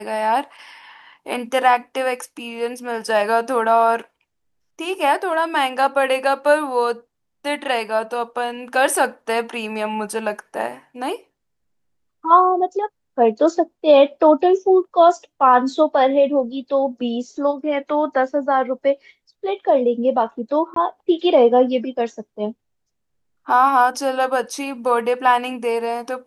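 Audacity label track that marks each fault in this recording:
20.740000	20.760000	gap 23 ms

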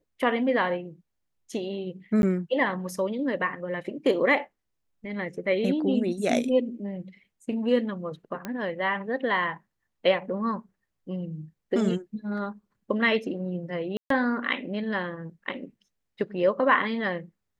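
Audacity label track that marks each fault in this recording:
2.220000	2.230000	gap 11 ms
8.450000	8.450000	pop -18 dBFS
13.970000	14.100000	gap 0.133 s

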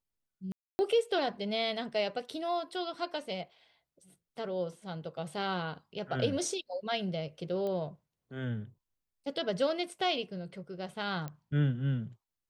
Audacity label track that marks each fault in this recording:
0.520000	0.790000	gap 0.27 s
7.670000	7.670000	pop -26 dBFS
11.280000	11.280000	pop -26 dBFS

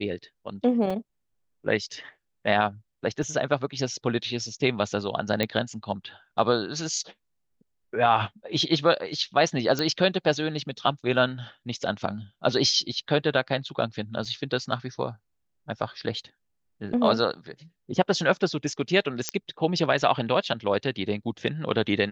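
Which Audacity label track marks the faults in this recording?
0.900000	0.900000	gap 4 ms
3.230000	3.230000	gap 3.4 ms
5.430000	5.430000	pop -11 dBFS
9.790000	9.790000	pop -12 dBFS
14.250000	14.250000	gap 4.6 ms
19.290000	19.290000	pop -8 dBFS

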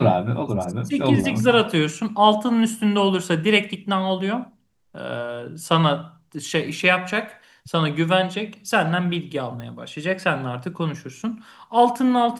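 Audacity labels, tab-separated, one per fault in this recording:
9.600000	9.600000	pop -22 dBFS

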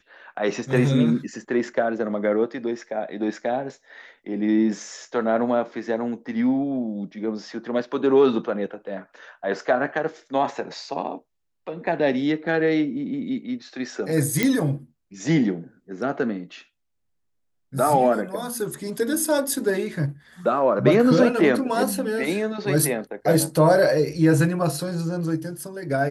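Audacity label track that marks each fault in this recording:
14.430000	14.430000	pop -6 dBFS

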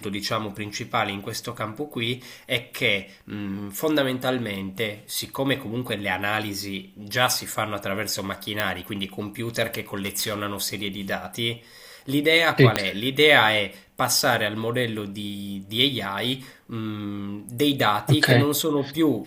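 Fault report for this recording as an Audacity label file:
8.600000	8.600000	pop -8 dBFS
9.960000	10.390000	clipped -21 dBFS
12.760000	12.760000	pop -4 dBFS

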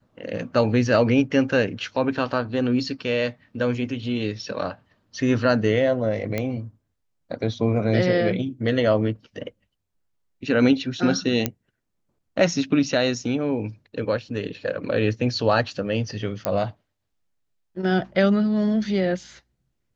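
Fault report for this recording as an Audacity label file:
6.380000	6.380000	pop -12 dBFS
11.460000	11.460000	pop -6 dBFS
16.450000	16.450000	pop -7 dBFS

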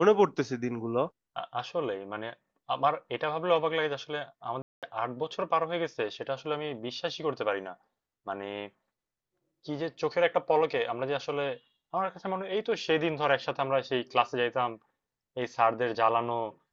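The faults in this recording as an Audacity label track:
4.620000	4.830000	gap 0.207 s

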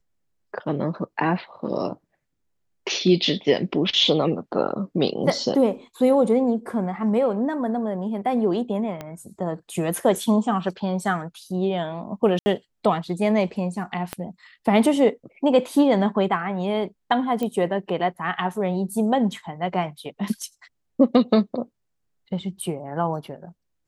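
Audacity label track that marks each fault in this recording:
9.010000	9.010000	pop -18 dBFS
12.390000	12.460000	gap 70 ms
14.130000	14.130000	pop -12 dBFS
17.430000	17.430000	pop -15 dBFS

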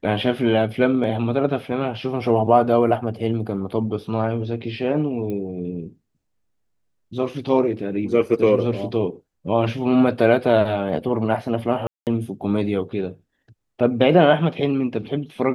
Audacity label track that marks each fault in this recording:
5.300000	5.300000	pop -19 dBFS
11.870000	12.070000	gap 0.198 s

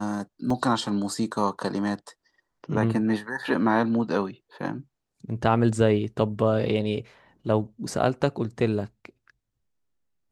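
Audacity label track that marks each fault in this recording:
0.500000	0.500000	gap 3.8 ms

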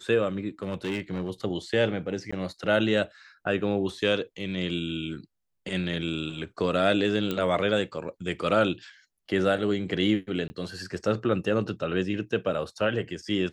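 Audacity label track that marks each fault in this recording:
0.630000	1.300000	clipped -25 dBFS
2.310000	2.330000	gap 15 ms
7.310000	7.310000	pop -15 dBFS
10.480000	10.500000	gap 20 ms

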